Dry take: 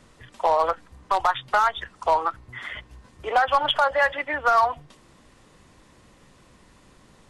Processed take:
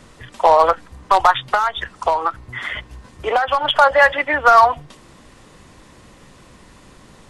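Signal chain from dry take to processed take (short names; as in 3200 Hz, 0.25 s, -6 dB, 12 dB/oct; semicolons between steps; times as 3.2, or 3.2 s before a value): 1.49–3.79 compressor 10:1, threshold -22 dBFS, peak gain reduction 8 dB; gain +8.5 dB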